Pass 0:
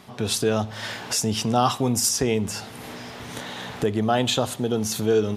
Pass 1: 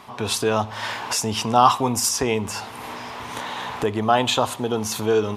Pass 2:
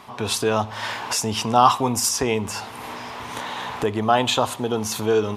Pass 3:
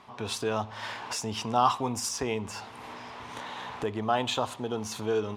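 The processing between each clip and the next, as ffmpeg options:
-af "equalizer=f=160:t=o:w=0.67:g=-6,equalizer=f=1000:t=o:w=0.67:g=12,equalizer=f=2500:t=o:w=0.67:g=4"
-af anull
-af "adynamicsmooth=sensitivity=5.5:basefreq=7700,volume=0.376"

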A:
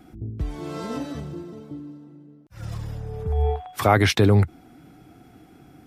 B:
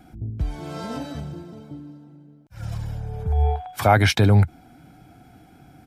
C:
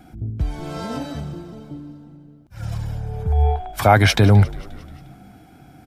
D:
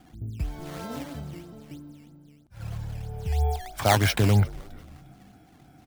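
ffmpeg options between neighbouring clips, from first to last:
-af "aecho=1:1:1.3:0.42"
-filter_complex "[0:a]asplit=6[s0][s1][s2][s3][s4][s5];[s1]adelay=177,afreqshift=-60,volume=0.0944[s6];[s2]adelay=354,afreqshift=-120,volume=0.0575[s7];[s3]adelay=531,afreqshift=-180,volume=0.0351[s8];[s4]adelay=708,afreqshift=-240,volume=0.0214[s9];[s5]adelay=885,afreqshift=-300,volume=0.013[s10];[s0][s6][s7][s8][s9][s10]amix=inputs=6:normalize=0,volume=1.41"
-af "acrusher=samples=10:mix=1:aa=0.000001:lfo=1:lforange=16:lforate=3.1,volume=0.422"

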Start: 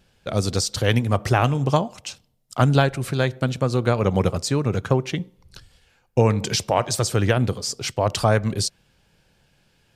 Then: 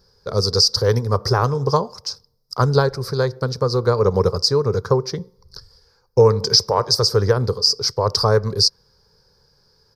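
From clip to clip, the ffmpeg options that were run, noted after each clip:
-af "firequalizer=gain_entry='entry(100,0);entry(300,-10);entry(430,9);entry(670,-8);entry(1000,5);entry(2800,-22);entry(4900,15);entry(7300,-11);entry(14000,1)':delay=0.05:min_phase=1,volume=1.19"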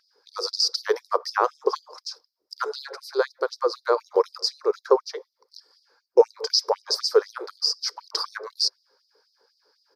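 -af "aeval=exprs='val(0)+0.0316*(sin(2*PI*50*n/s)+sin(2*PI*2*50*n/s)/2+sin(2*PI*3*50*n/s)/3+sin(2*PI*4*50*n/s)/4+sin(2*PI*5*50*n/s)/5)':c=same,bass=f=250:g=11,treble=f=4000:g=-10,afftfilt=real='re*gte(b*sr/1024,310*pow(3900/310,0.5+0.5*sin(2*PI*4*pts/sr)))':imag='im*gte(b*sr/1024,310*pow(3900/310,0.5+0.5*sin(2*PI*4*pts/sr)))':win_size=1024:overlap=0.75"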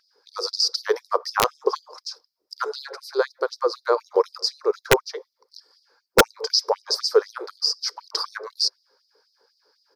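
-af "aeval=exprs='(mod(2.11*val(0)+1,2)-1)/2.11':c=same,volume=1.12"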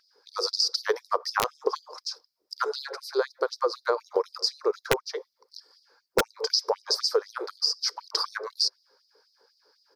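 -af "acompressor=threshold=0.1:ratio=10"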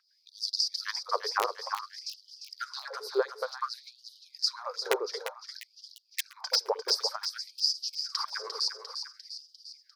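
-filter_complex "[0:a]acrossover=split=1900[s0][s1];[s0]aeval=exprs='val(0)*(1-0.5/2+0.5/2*cos(2*PI*2.8*n/s))':c=same[s2];[s1]aeval=exprs='val(0)*(1-0.5/2-0.5/2*cos(2*PI*2.8*n/s))':c=same[s3];[s2][s3]amix=inputs=2:normalize=0,asplit=2[s4][s5];[s5]aecho=0:1:349|698|1047|1396|1745|2094|2443:0.398|0.235|0.139|0.0818|0.0482|0.0285|0.0168[s6];[s4][s6]amix=inputs=2:normalize=0,afftfilt=real='re*gte(b*sr/1024,290*pow(2900/290,0.5+0.5*sin(2*PI*0.55*pts/sr)))':imag='im*gte(b*sr/1024,290*pow(2900/290,0.5+0.5*sin(2*PI*0.55*pts/sr)))':win_size=1024:overlap=0.75,volume=0.841"

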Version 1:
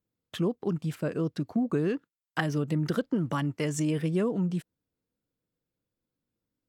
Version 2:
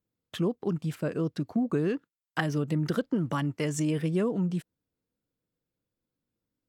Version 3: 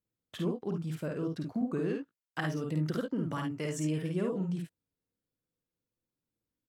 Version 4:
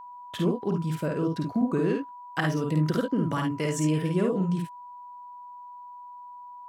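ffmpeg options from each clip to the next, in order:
-af anull
-af "aecho=1:1:52|70:0.668|0.316,volume=0.473"
-af "aeval=exprs='val(0)+0.00398*sin(2*PI*980*n/s)':c=same,volume=2.24"

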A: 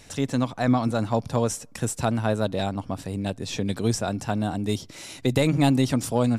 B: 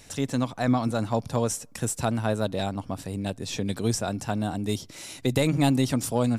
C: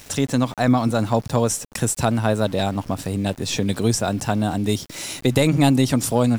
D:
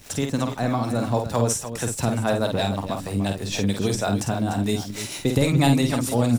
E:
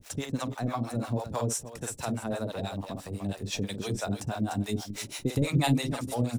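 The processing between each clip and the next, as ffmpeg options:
-af "highshelf=f=7900:g=6,volume=0.794"
-filter_complex "[0:a]asplit=2[s0][s1];[s1]acompressor=threshold=0.0224:ratio=6,volume=1[s2];[s0][s2]amix=inputs=2:normalize=0,aeval=exprs='val(0)*gte(abs(val(0)),0.00794)':c=same,volume=1.58"
-filter_complex "[0:a]acrossover=split=430[s0][s1];[s0]aeval=exprs='val(0)*(1-0.7/2+0.7/2*cos(2*PI*6.3*n/s))':c=same[s2];[s1]aeval=exprs='val(0)*(1-0.7/2-0.7/2*cos(2*PI*6.3*n/s))':c=same[s3];[s2][s3]amix=inputs=2:normalize=0,aecho=1:1:50|296:0.531|0.299"
-filter_complex "[0:a]acrossover=split=490[s0][s1];[s0]aeval=exprs='val(0)*(1-1/2+1/2*cos(2*PI*6.1*n/s))':c=same[s2];[s1]aeval=exprs='val(0)*(1-1/2-1/2*cos(2*PI*6.1*n/s))':c=same[s3];[s2][s3]amix=inputs=2:normalize=0,volume=0.668"

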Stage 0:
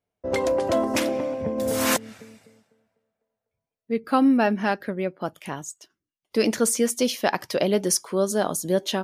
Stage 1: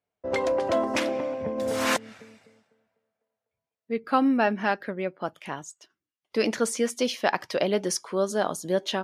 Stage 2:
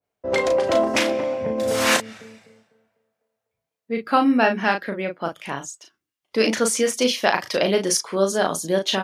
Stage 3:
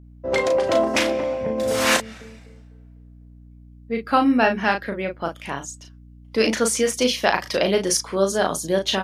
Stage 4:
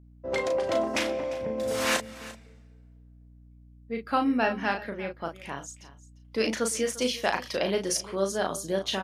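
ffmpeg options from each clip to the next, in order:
-af "highpass=f=850:p=1,aemphasis=mode=reproduction:type=bsi,volume=1.26"
-filter_complex "[0:a]asplit=2[s0][s1];[s1]adelay=36,volume=0.531[s2];[s0][s2]amix=inputs=2:normalize=0,adynamicequalizer=threshold=0.0158:dfrequency=1700:dqfactor=0.7:tfrequency=1700:tqfactor=0.7:attack=5:release=100:ratio=0.375:range=2:mode=boostabove:tftype=highshelf,volume=1.5"
-af "aeval=exprs='val(0)+0.00631*(sin(2*PI*60*n/s)+sin(2*PI*2*60*n/s)/2+sin(2*PI*3*60*n/s)/3+sin(2*PI*4*60*n/s)/4+sin(2*PI*5*60*n/s)/5)':c=same"
-af "aecho=1:1:348:0.133,volume=0.422"

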